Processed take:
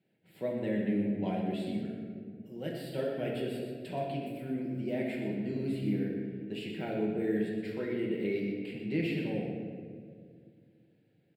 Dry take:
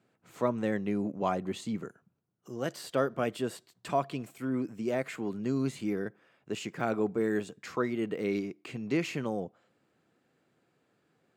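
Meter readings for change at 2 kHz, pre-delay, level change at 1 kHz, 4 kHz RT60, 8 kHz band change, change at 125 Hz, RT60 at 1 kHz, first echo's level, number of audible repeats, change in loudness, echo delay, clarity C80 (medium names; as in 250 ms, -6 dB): -3.5 dB, 5 ms, -8.5 dB, 1.1 s, under -10 dB, +1.0 dB, 1.5 s, -9.5 dB, 1, -1.5 dB, 122 ms, 3.0 dB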